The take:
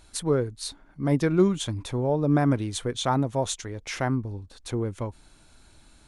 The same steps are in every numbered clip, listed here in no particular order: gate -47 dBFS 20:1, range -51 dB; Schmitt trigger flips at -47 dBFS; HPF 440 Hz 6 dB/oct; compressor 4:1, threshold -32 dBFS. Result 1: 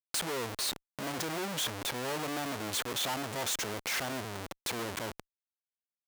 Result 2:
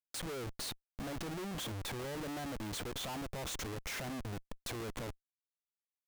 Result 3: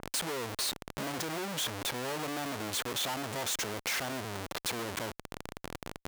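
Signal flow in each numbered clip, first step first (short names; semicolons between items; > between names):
gate > Schmitt trigger > compressor > HPF; compressor > gate > HPF > Schmitt trigger; Schmitt trigger > gate > HPF > compressor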